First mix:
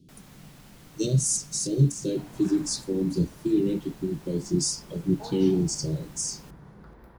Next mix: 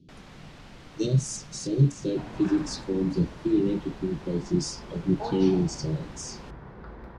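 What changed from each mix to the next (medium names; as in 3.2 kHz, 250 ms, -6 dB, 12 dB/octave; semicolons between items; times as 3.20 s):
first sound +5.5 dB; second sound +7.5 dB; master: add low-pass 4.4 kHz 12 dB/octave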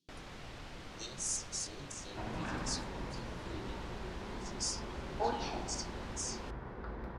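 speech: add differentiator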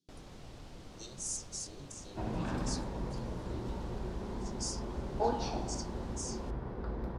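second sound +6.0 dB; master: add peaking EQ 1.9 kHz -10 dB 2.1 oct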